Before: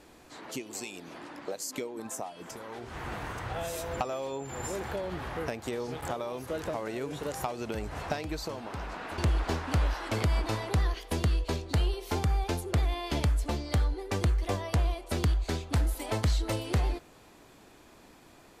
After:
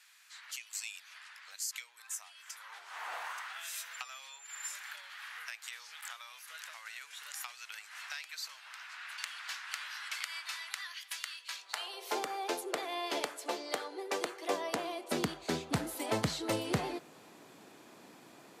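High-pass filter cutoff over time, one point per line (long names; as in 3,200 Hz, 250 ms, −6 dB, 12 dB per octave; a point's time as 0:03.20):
high-pass filter 24 dB per octave
0:02.47 1,500 Hz
0:03.16 680 Hz
0:03.61 1,500 Hz
0:11.48 1,500 Hz
0:12.20 370 Hz
0:14.29 370 Hz
0:15.57 140 Hz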